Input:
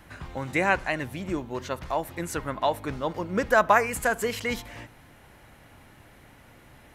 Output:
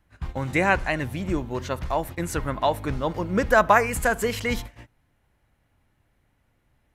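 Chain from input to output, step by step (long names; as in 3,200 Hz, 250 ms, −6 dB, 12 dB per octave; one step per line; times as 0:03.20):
noise gate −39 dBFS, range −21 dB
low-shelf EQ 110 Hz +11 dB
level +2 dB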